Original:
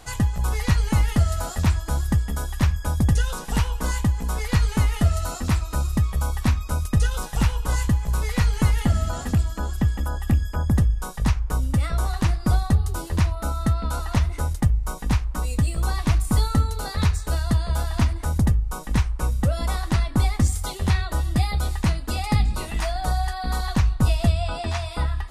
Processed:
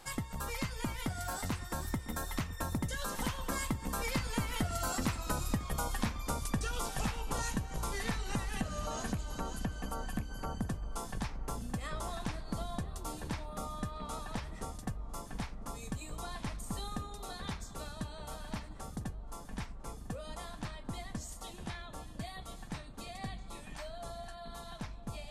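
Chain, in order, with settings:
source passing by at 0:05.44, 30 m/s, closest 30 metres
parametric band 66 Hz −14.5 dB 1.4 octaves
downward compressor 4 to 1, threshold −42 dBFS, peak gain reduction 17 dB
feedback echo with a low-pass in the loop 1,001 ms, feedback 85%, low-pass 1,600 Hz, level −16 dB
level +8.5 dB

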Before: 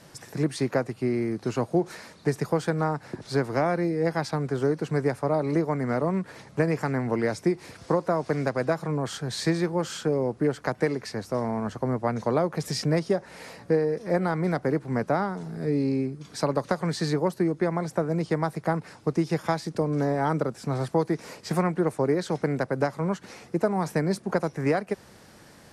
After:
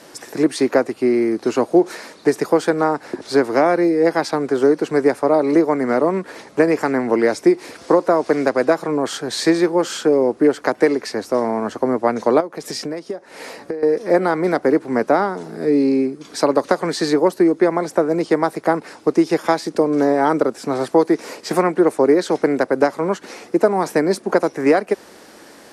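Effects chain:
low shelf with overshoot 200 Hz −13 dB, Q 1.5
0:12.40–0:13.83: downward compressor 12 to 1, threshold −32 dBFS, peak gain reduction 16.5 dB
level +8.5 dB

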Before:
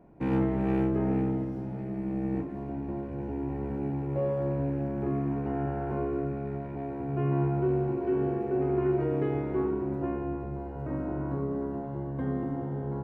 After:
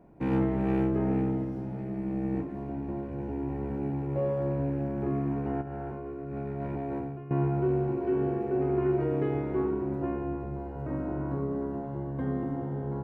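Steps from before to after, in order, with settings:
0:05.61–0:07.31: compressor whose output falls as the input rises −36 dBFS, ratio −1

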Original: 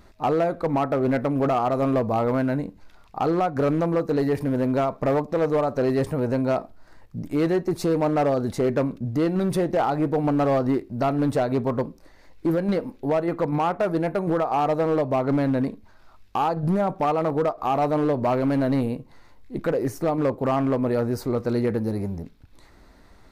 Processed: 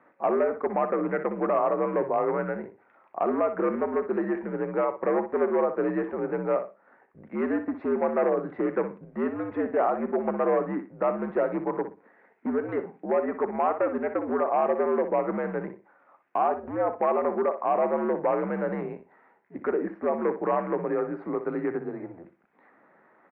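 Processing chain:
low-shelf EQ 480 Hz −4.5 dB
repeating echo 61 ms, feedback 21%, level −10.5 dB
single-sideband voice off tune −80 Hz 340–2,200 Hz

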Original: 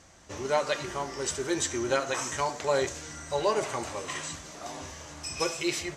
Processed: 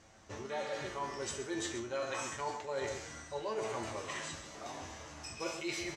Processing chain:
high-shelf EQ 6,700 Hz −9.5 dB
tuned comb filter 110 Hz, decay 0.45 s, harmonics all, mix 80%
single-tap delay 134 ms −11.5 dB
reversed playback
downward compressor 6 to 1, threshold −40 dBFS, peak gain reduction 10 dB
reversed playback
healed spectral selection 0:00.53–0:00.83, 970–4,200 Hz after
level +5.5 dB

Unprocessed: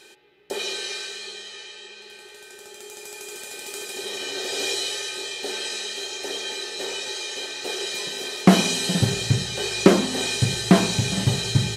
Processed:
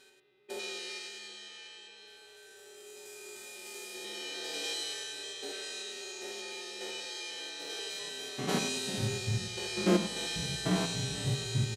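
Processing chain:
spectrum averaged block by block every 100 ms
barber-pole flanger 4.8 ms −0.35 Hz
level −6 dB

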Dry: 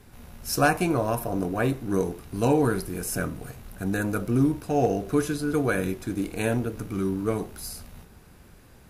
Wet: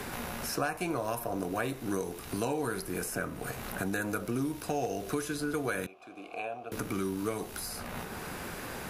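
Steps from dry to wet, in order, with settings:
low-shelf EQ 340 Hz −10.5 dB
downward compressor 2 to 1, threshold −47 dBFS, peak gain reduction 16 dB
0:05.86–0:06.72: formant filter a
multiband upward and downward compressor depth 70%
level +8 dB

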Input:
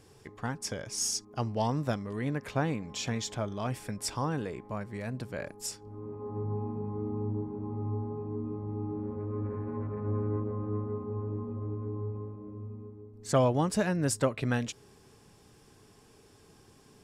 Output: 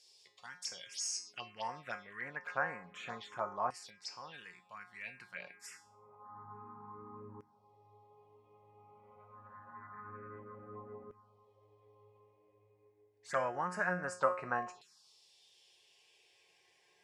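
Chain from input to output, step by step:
dynamic equaliser 310 Hz, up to −7 dB, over −48 dBFS, Q 2.5
tuned comb filter 180 Hz, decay 0.44 s, harmonics all, mix 80%
auto-filter band-pass saw down 0.27 Hz 960–4,700 Hz
phaser swept by the level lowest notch 200 Hz, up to 3,500 Hz, full sweep at −53.5 dBFS
0:03.90–0:04.34: high-frequency loss of the air 150 metres
level +18 dB

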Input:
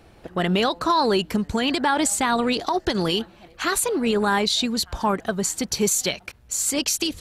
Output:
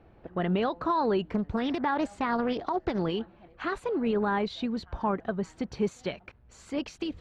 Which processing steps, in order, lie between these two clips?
low-pass filter 2,900 Hz 12 dB per octave
high-shelf EQ 2,000 Hz −9.5 dB
0:01.32–0:02.99: highs frequency-modulated by the lows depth 0.47 ms
level −5 dB

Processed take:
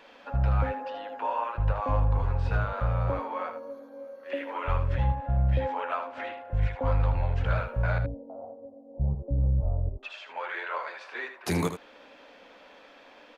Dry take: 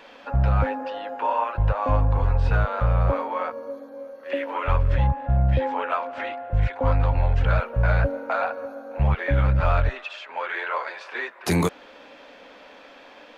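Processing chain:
0:07.98–0:10.03: Gaussian smoothing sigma 16 samples
single-tap delay 78 ms −9.5 dB
level −6 dB

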